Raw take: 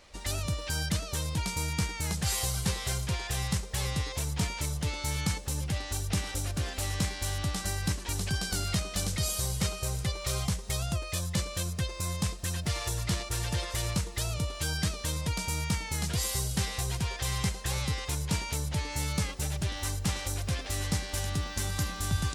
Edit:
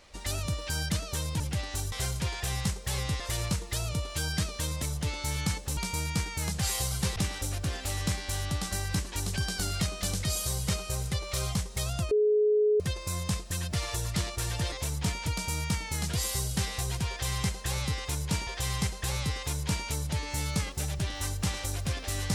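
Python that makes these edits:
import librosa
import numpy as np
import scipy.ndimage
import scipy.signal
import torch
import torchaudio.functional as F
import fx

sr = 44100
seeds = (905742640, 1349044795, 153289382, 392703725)

y = fx.edit(x, sr, fx.swap(start_s=1.4, length_s=1.39, other_s=5.57, other_length_s=0.52),
    fx.swap(start_s=4.07, length_s=0.55, other_s=13.65, other_length_s=1.62),
    fx.bleep(start_s=11.04, length_s=0.69, hz=422.0, db=-20.5),
    fx.repeat(start_s=17.09, length_s=1.38, count=2), tone=tone)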